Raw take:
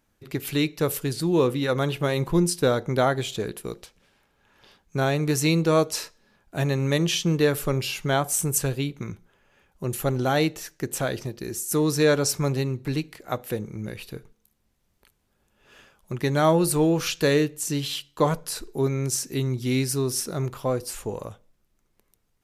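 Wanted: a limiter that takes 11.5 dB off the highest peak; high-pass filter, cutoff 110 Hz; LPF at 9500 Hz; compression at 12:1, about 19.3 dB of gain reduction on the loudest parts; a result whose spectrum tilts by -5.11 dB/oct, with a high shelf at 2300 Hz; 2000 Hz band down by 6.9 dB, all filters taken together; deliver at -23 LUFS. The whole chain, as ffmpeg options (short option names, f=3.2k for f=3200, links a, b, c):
-af "highpass=110,lowpass=9.5k,equalizer=f=2k:t=o:g=-5.5,highshelf=f=2.3k:g=-7.5,acompressor=threshold=-36dB:ratio=12,volume=21dB,alimiter=limit=-12.5dB:level=0:latency=1"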